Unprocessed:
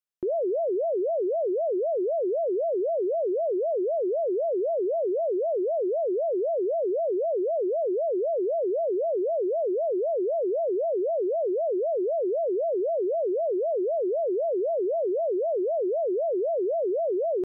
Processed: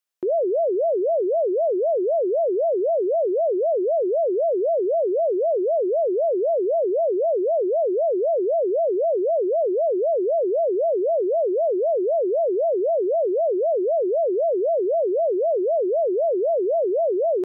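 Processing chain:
high-pass filter 450 Hz 6 dB per octave
level +7.5 dB

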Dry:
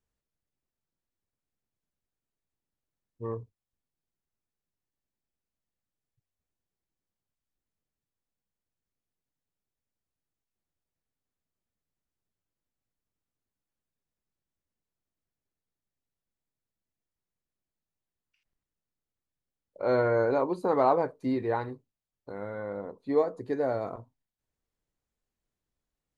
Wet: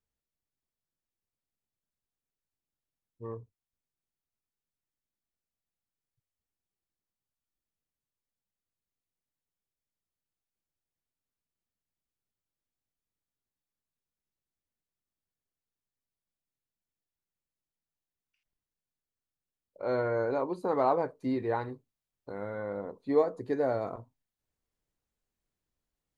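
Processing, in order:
speech leveller within 4 dB 2 s
level −1.5 dB

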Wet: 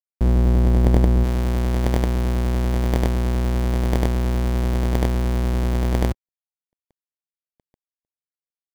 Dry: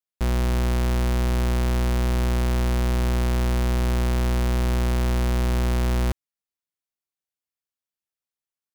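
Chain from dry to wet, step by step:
each half-wave held at its own peak
high-pass filter 42 Hz 6 dB per octave
log-companded quantiser 8 bits
high-shelf EQ 4,700 Hz +10.5 dB
upward compression, threshold −44 dBFS
decimation without filtering 33×
tilt shelving filter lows +8 dB, about 750 Hz, from 0:01.23 lows +3 dB

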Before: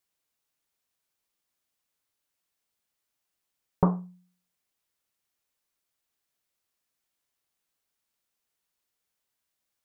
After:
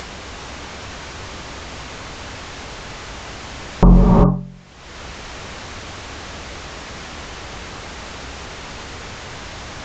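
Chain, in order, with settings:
sub-octave generator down 2 octaves, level +4 dB
low-pass filter 1,500 Hz 6 dB per octave
upward compression, threshold −23 dBFS
reverb whose tail is shaped and stops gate 420 ms rising, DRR 5.5 dB
boost into a limiter +20.5 dB
level −1 dB
Ogg Vorbis 96 kbit/s 16,000 Hz

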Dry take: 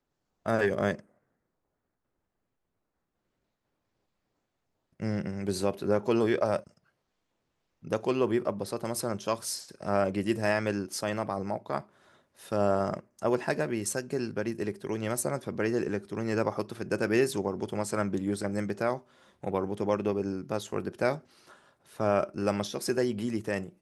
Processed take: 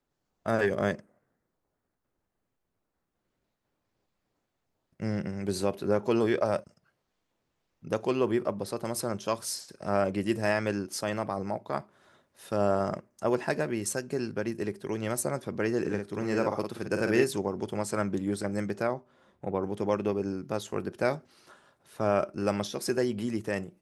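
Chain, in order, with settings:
0:15.80–0:17.24: double-tracking delay 50 ms −5.5 dB
0:18.87–0:19.63: high-shelf EQ 2,100 Hz −10.5 dB

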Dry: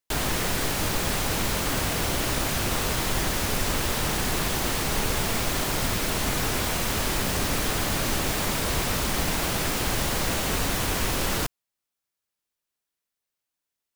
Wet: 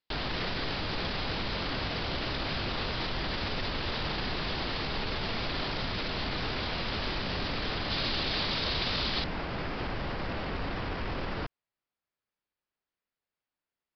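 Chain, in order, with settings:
brickwall limiter −23 dBFS, peak gain reduction 10 dB
parametric band 4,100 Hz +3.5 dB 1.2 octaves, from 0:07.90 +10 dB, from 0:09.24 −7.5 dB
downsampling to 11,025 Hz

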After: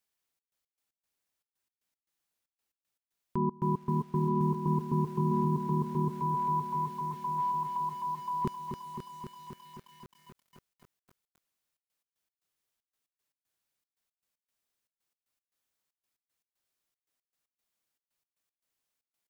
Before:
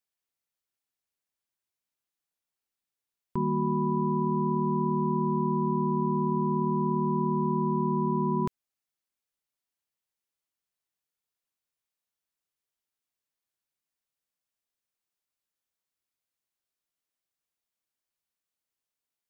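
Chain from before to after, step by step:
0:06.20–0:08.45: Butterworth high-pass 910 Hz 36 dB per octave
brickwall limiter −24.5 dBFS, peak gain reduction 7.5 dB
gate pattern "xxx.x.x." 116 BPM −24 dB
feedback echo at a low word length 264 ms, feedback 80%, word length 10 bits, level −7 dB
level +4 dB

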